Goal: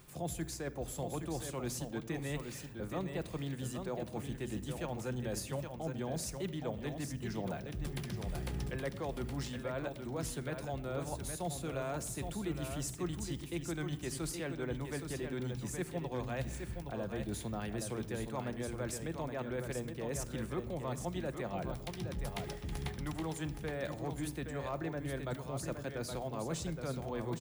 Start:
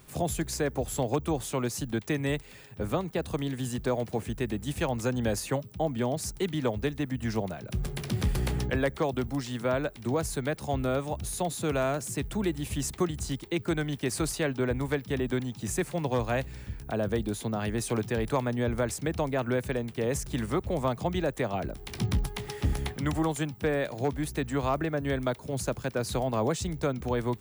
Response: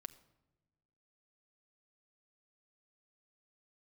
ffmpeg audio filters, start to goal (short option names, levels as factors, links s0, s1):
-filter_complex "[0:a]areverse,acompressor=threshold=0.02:ratio=6,areverse,aecho=1:1:819:0.473[s0];[1:a]atrim=start_sample=2205[s1];[s0][s1]afir=irnorm=-1:irlink=0,volume=1.41"